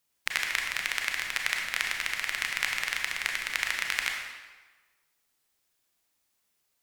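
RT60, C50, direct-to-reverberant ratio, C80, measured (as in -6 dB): 1.3 s, 3.0 dB, 1.0 dB, 4.5 dB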